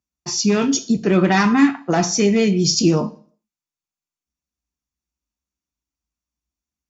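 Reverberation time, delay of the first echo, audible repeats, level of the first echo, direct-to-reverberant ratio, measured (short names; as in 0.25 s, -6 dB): 0.45 s, none, none, none, 9.0 dB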